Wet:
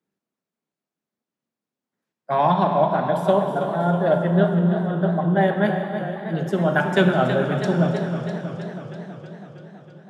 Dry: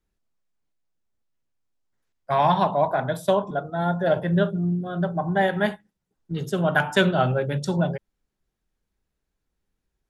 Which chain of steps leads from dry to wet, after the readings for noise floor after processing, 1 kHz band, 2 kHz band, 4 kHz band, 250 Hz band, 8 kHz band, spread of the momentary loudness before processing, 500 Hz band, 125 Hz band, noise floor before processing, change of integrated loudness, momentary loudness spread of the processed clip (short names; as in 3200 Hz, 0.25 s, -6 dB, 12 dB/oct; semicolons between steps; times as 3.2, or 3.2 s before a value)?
under -85 dBFS, +2.0 dB, +0.5 dB, -2.0 dB, +4.5 dB, n/a, 7 LU, +3.5 dB, +3.5 dB, -81 dBFS, +2.5 dB, 14 LU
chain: HPF 170 Hz 24 dB/oct; tilt -2 dB/oct; Schroeder reverb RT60 3.7 s, combs from 27 ms, DRR 6 dB; warbling echo 0.323 s, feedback 68%, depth 82 cents, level -10 dB